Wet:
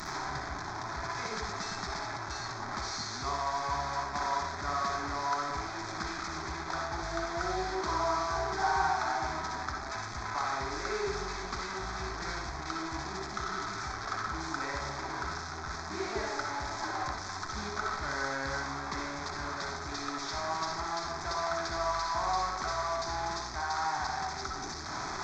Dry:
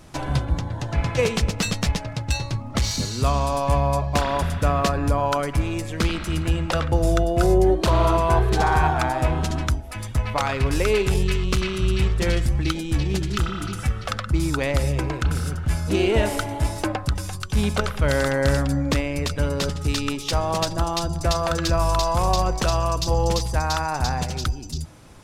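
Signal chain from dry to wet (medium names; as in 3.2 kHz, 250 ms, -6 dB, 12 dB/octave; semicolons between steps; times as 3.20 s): one-bit delta coder 32 kbps, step -17.5 dBFS; tone controls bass -14 dB, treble -1 dB; static phaser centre 1.2 kHz, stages 4; on a send: resonant low shelf 280 Hz -13.5 dB, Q 3 + reverberation RT60 0.50 s, pre-delay 53 ms, DRR -0.5 dB; on the sum: trim -8.5 dB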